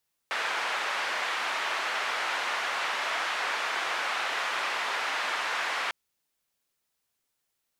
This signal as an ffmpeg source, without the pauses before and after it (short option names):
-f lavfi -i "anoisesrc=c=white:d=5.6:r=44100:seed=1,highpass=f=830,lowpass=f=1900,volume=-13.1dB"